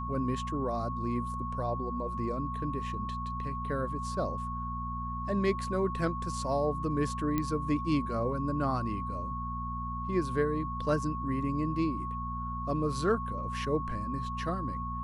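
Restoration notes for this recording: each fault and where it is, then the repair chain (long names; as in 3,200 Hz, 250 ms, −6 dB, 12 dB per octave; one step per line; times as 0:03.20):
mains hum 60 Hz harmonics 4 −38 dBFS
whistle 1,100 Hz −36 dBFS
0:07.38: click −17 dBFS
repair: click removal
hum removal 60 Hz, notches 4
notch filter 1,100 Hz, Q 30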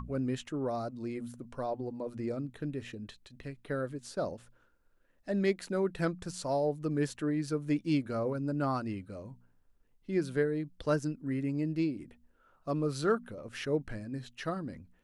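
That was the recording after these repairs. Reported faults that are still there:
none of them is left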